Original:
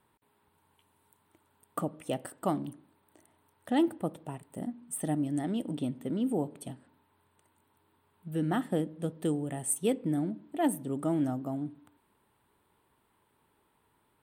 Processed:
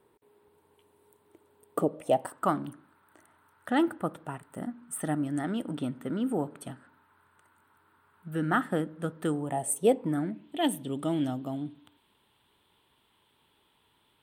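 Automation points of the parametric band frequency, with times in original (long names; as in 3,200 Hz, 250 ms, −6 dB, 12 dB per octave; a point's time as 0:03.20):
parametric band +14.5 dB 0.79 octaves
0:01.87 420 Hz
0:02.46 1,400 Hz
0:09.34 1,400 Hz
0:09.77 460 Hz
0:10.49 3,300 Hz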